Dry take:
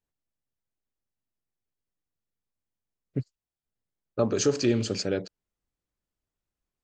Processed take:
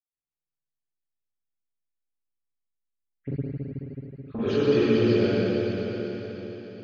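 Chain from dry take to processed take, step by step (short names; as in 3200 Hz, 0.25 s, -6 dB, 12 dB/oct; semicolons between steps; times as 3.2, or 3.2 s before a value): 3.2–4.24 inverse Chebyshev high-pass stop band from 660 Hz, stop band 40 dB; gate -34 dBFS, range -16 dB; reverb RT60 4.6 s, pre-delay 76 ms, DRR -60 dB; gain -4.5 dB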